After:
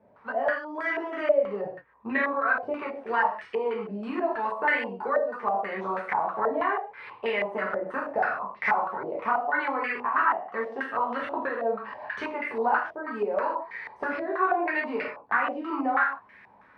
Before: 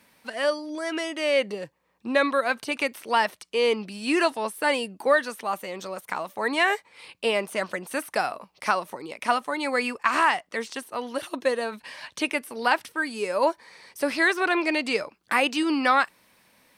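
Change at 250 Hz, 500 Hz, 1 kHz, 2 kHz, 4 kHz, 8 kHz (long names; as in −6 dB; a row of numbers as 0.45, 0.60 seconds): −5.5 dB, −2.0 dB, 0.0 dB, −2.0 dB, −16.0 dB, below −30 dB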